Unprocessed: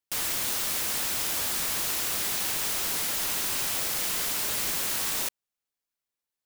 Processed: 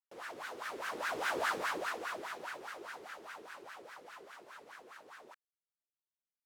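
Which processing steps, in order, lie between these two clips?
Doppler pass-by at 1.41 s, 8 m/s, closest 2.6 m; wah-wah 4.9 Hz 370–1600 Hz, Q 4.5; trim +13.5 dB

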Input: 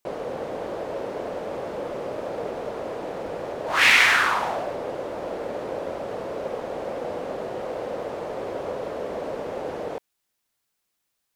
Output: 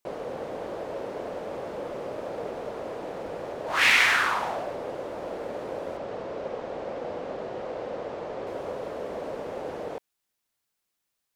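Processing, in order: 5.97–8.47 s: low-pass 6.1 kHz 12 dB/octave; trim -3.5 dB

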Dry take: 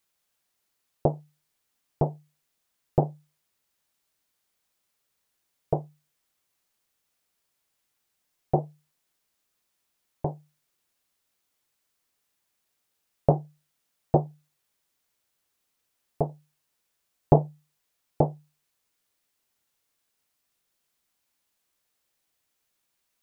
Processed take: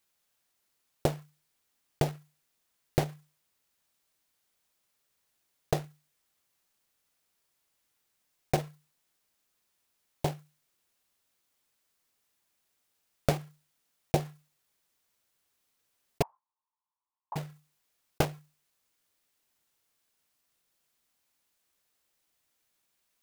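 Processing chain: block-companded coder 3-bit; compression 6:1, threshold -22 dBFS, peak gain reduction 11 dB; 16.22–17.36 s: Butterworth band-pass 970 Hz, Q 4.3

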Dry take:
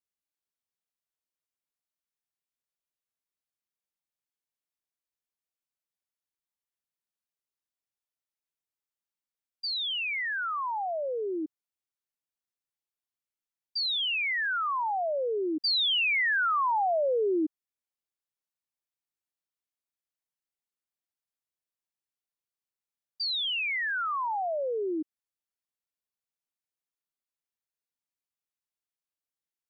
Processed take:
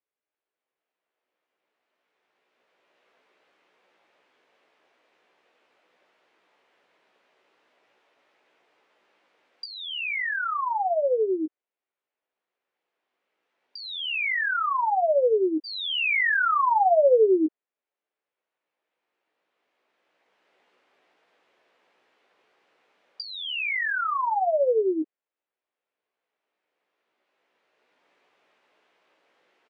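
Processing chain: recorder AGC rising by 9.7 dB/s; Chebyshev band-pass 450–2500 Hz, order 2; tilt shelf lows +5.5 dB, about 700 Hz; doubling 16 ms -6 dB; trim +6.5 dB

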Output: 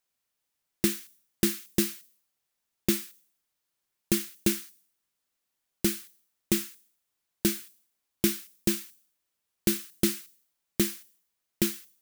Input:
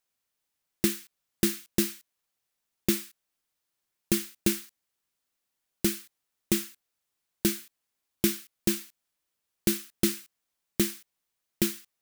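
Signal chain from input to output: on a send: pre-emphasis filter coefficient 0.9 + reverberation RT60 0.65 s, pre-delay 3 ms, DRR 26 dB

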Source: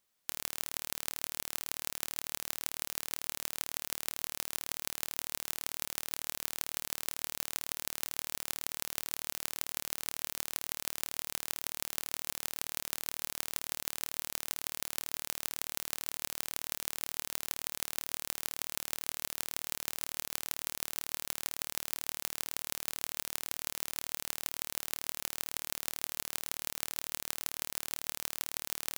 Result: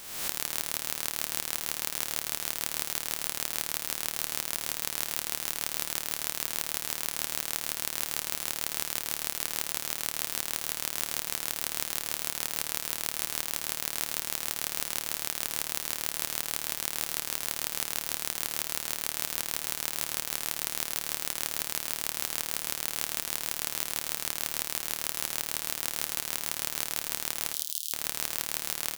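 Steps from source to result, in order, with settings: reverse spectral sustain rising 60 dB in 1.06 s; 27.53–27.93 s: steep high-pass 3 kHz 72 dB/octave; on a send: feedback delay 85 ms, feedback 36%, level -12 dB; on the sum: trim +2 dB

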